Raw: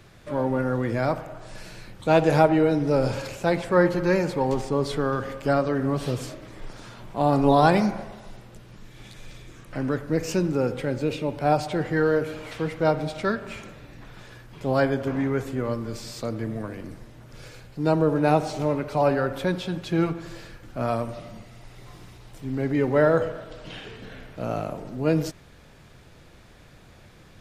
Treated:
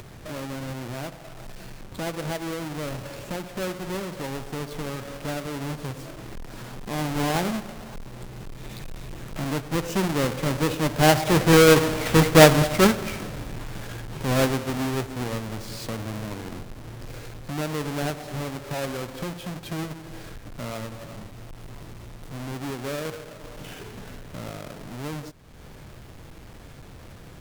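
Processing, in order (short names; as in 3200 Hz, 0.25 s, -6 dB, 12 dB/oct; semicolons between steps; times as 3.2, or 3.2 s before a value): half-waves squared off; Doppler pass-by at 12.18, 13 m/s, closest 8.2 m; upward compressor, threshold -33 dBFS; gain +6.5 dB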